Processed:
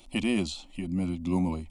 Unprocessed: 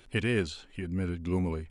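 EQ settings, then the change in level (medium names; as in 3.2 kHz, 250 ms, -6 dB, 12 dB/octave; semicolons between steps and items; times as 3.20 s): static phaser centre 430 Hz, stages 6; +6.0 dB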